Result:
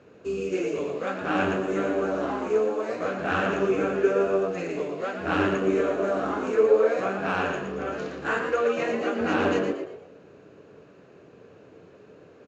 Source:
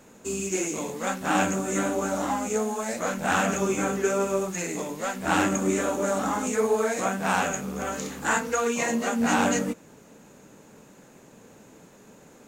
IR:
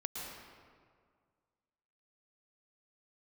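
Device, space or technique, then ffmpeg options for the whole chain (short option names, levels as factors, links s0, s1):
frequency-shifting delay pedal into a guitar cabinet: -filter_complex "[0:a]asplit=5[s0][s1][s2][s3][s4];[s1]adelay=116,afreqshift=89,volume=0.473[s5];[s2]adelay=232,afreqshift=178,volume=0.176[s6];[s3]adelay=348,afreqshift=267,volume=0.0646[s7];[s4]adelay=464,afreqshift=356,volume=0.024[s8];[s0][s5][s6][s7][s8]amix=inputs=5:normalize=0,highpass=76,equalizer=f=91:t=q:w=4:g=7,equalizer=f=220:t=q:w=4:g=-8,equalizer=f=430:t=q:w=4:g=6,equalizer=f=880:t=q:w=4:g=-9,equalizer=f=2000:t=q:w=4:g=-6,equalizer=f=3500:t=q:w=4:g=-7,lowpass=f=4000:w=0.5412,lowpass=f=4000:w=1.3066"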